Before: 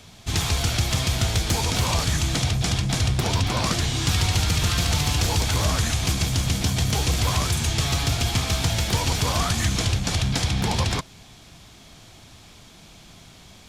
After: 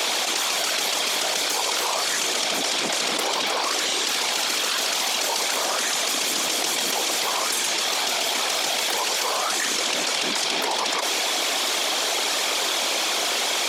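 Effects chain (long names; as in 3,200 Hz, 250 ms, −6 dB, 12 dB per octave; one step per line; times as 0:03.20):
random phases in short frames
high-pass filter 410 Hz 24 dB per octave
envelope flattener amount 100%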